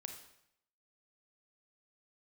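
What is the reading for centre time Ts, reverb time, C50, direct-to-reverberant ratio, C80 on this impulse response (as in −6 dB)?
21 ms, 0.75 s, 7.0 dB, 4.5 dB, 10.0 dB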